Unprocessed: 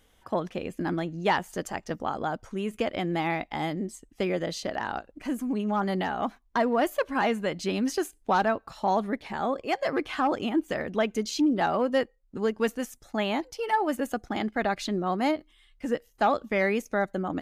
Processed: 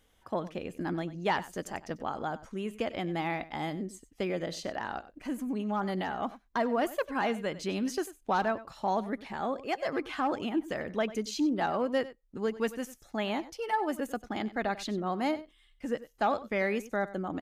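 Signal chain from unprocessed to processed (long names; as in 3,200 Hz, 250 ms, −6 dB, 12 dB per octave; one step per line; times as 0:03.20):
single-tap delay 95 ms −16.5 dB
level −4.5 dB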